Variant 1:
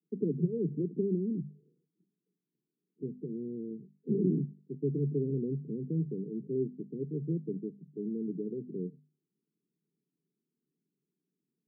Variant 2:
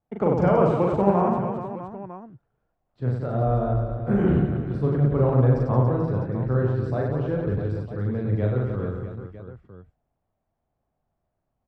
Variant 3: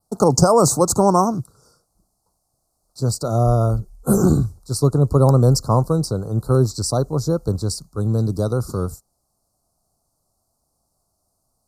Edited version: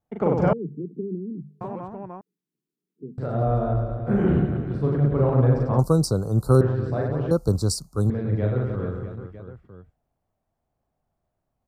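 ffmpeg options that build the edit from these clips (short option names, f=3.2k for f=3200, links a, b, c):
-filter_complex "[0:a]asplit=2[a][b];[2:a]asplit=2[c][d];[1:a]asplit=5[e][f][g][h][i];[e]atrim=end=0.532[j];[a]atrim=start=0.528:end=1.612[k];[f]atrim=start=1.608:end=2.212[l];[b]atrim=start=2.208:end=3.182[m];[g]atrim=start=3.178:end=5.792[n];[c]atrim=start=5.788:end=6.612[o];[h]atrim=start=6.608:end=7.312[p];[d]atrim=start=7.308:end=8.102[q];[i]atrim=start=8.098[r];[j][k]acrossfade=d=0.004:c1=hsin:c2=hsin[s];[s][l]acrossfade=d=0.004:c1=hsin:c2=hsin[t];[t][m]acrossfade=d=0.004:c1=hsin:c2=hsin[u];[u][n]acrossfade=d=0.004:c1=hsin:c2=hsin[v];[v][o]acrossfade=d=0.004:c1=hsin:c2=hsin[w];[w][p]acrossfade=d=0.004:c1=hsin:c2=hsin[x];[x][q]acrossfade=d=0.004:c1=hsin:c2=hsin[y];[y][r]acrossfade=d=0.004:c1=hsin:c2=hsin"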